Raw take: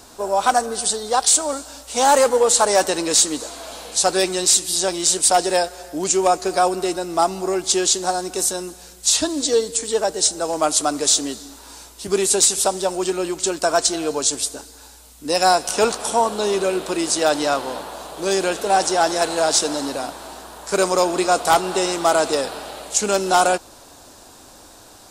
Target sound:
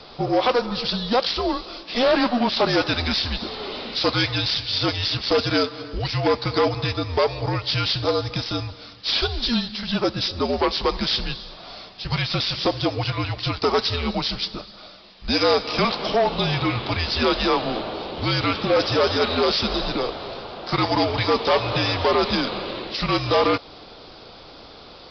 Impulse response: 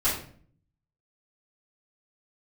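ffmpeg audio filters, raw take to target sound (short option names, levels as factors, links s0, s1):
-filter_complex "[0:a]highpass=f=470:p=1,acrossover=split=720[s0][s1];[s0]acompressor=threshold=0.0316:ratio=6[s2];[s2][s1]amix=inputs=2:normalize=0,asoftclip=type=tanh:threshold=0.224,afreqshift=-250,asoftclip=type=hard:threshold=0.106,aresample=11025,aresample=44100,volume=1.88"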